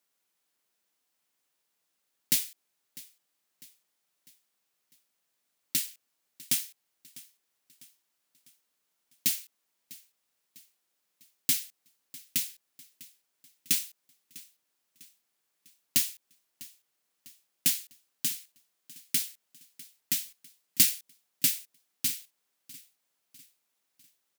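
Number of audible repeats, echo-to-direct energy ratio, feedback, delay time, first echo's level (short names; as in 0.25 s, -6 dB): 3, -19.5 dB, 48%, 0.65 s, -20.5 dB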